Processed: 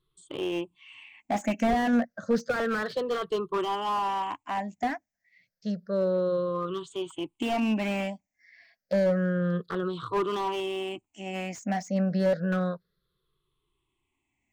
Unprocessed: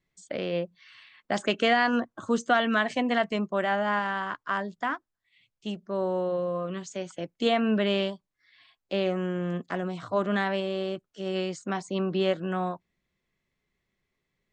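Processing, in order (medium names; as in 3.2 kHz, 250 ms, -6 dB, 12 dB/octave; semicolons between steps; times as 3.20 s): drifting ripple filter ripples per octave 0.63, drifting -0.3 Hz, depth 22 dB; slew-rate limiter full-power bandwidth 75 Hz; trim -3.5 dB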